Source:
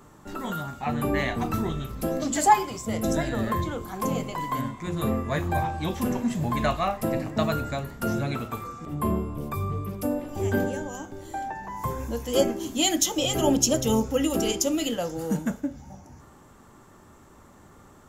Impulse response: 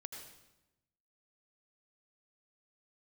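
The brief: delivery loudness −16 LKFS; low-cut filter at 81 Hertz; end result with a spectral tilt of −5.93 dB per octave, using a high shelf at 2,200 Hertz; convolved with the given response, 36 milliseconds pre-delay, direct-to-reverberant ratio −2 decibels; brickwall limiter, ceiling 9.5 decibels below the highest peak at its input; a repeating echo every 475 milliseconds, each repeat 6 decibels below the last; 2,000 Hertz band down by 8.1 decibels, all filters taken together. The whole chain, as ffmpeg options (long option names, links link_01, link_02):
-filter_complex "[0:a]highpass=81,equalizer=frequency=2000:width_type=o:gain=-7.5,highshelf=frequency=2200:gain=-6,alimiter=limit=-18dB:level=0:latency=1,aecho=1:1:475|950|1425|1900|2375|2850:0.501|0.251|0.125|0.0626|0.0313|0.0157,asplit=2[link_01][link_02];[1:a]atrim=start_sample=2205,adelay=36[link_03];[link_02][link_03]afir=irnorm=-1:irlink=0,volume=5.5dB[link_04];[link_01][link_04]amix=inputs=2:normalize=0,volume=9dB"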